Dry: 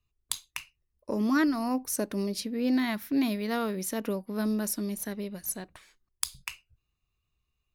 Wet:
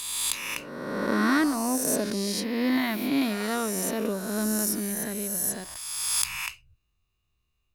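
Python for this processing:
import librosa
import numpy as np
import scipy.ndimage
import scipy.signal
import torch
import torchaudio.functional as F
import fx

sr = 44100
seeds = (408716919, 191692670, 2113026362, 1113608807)

y = fx.spec_swells(x, sr, rise_s=1.69)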